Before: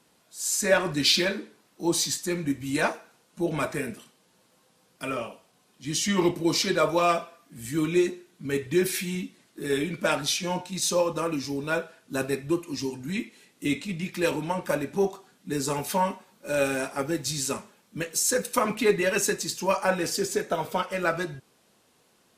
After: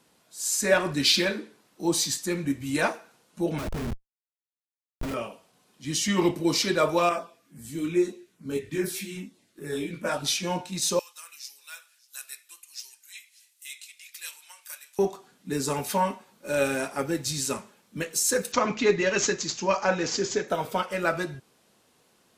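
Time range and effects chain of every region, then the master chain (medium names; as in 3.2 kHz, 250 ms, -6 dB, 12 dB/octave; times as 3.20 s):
3.58–5.14 s: Schmitt trigger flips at -32 dBFS + bass shelf 330 Hz +8 dB
7.09–10.25 s: LFO notch saw down 2.4 Hz 590–4800 Hz + detune thickener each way 22 cents
10.99–14.99 s: high-pass 1.3 kHz + differentiator + delay 590 ms -22 dB
18.52–20.48 s: careless resampling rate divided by 3×, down none, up filtered + treble shelf 11 kHz +5 dB
whole clip: none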